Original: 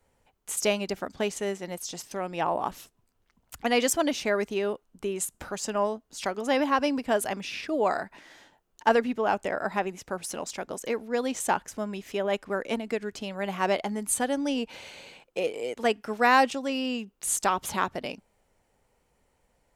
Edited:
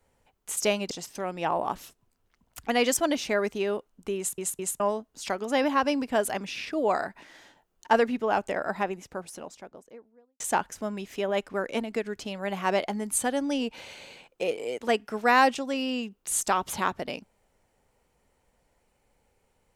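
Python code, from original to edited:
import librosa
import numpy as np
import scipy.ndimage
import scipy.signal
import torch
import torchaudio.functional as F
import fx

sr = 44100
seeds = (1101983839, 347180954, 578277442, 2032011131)

y = fx.studio_fade_out(x, sr, start_s=9.53, length_s=1.83)
y = fx.edit(y, sr, fx.cut(start_s=0.91, length_s=0.96),
    fx.stutter_over(start_s=5.13, slice_s=0.21, count=3), tone=tone)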